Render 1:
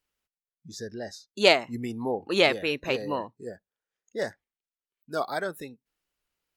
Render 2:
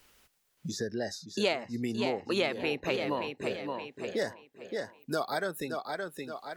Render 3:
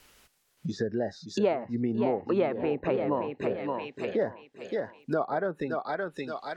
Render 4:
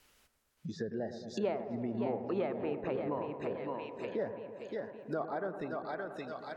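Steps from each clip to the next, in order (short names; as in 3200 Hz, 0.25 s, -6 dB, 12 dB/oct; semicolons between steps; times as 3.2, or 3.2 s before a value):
compressor 1.5:1, threshold -32 dBFS, peak gain reduction 7 dB; tape echo 0.572 s, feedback 31%, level -8 dB, low-pass 5400 Hz; three-band squash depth 70%
treble ducked by the level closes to 1100 Hz, closed at -29.5 dBFS; gain +4.5 dB
dark delay 0.111 s, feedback 79%, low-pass 1500 Hz, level -10.5 dB; gain -8 dB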